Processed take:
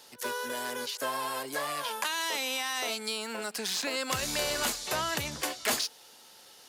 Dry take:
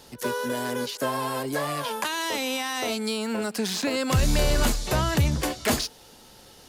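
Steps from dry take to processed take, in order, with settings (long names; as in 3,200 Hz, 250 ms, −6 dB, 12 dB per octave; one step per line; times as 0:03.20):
high-pass filter 930 Hz 6 dB per octave
level −1.5 dB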